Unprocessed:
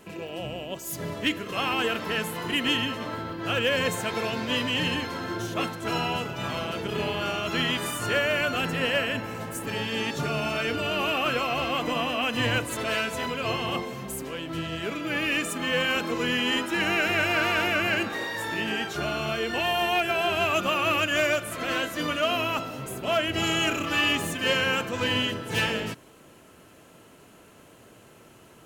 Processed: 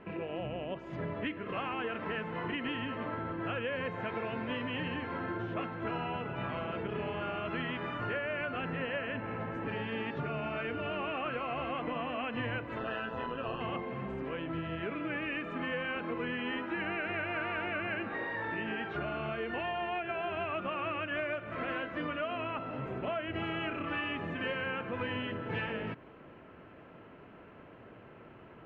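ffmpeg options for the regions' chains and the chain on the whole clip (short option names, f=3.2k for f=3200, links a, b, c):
-filter_complex "[0:a]asettb=1/sr,asplit=3[a][b][c];[a]atrim=end=12.784[d];[b]atrim=start=12.78:end=13.61,asetpts=PTS-STARTPTS,afade=t=in:d=0.004:c=qsin,afade=t=out:st=0.826:d=0.004:c=qsin,asuperstop=centerf=2200:order=8:qfactor=4.1,tremolo=f=120:d=0.621,asplit=2[e][f];[f]adelay=22,volume=-11dB[g];[e][g]amix=inputs=2:normalize=0,atrim=end_sample=36603[h];[c]atrim=start=13.606[i];[d][h]acrossfade=d=0.004:c1=hsin:c2=qsin[j];[j][i]acrossfade=d=0.004:c1=qsin:c2=hsin,lowpass=f=2.4k:w=0.5412,lowpass=f=2.4k:w=1.3066,acompressor=threshold=-34dB:ratio=4"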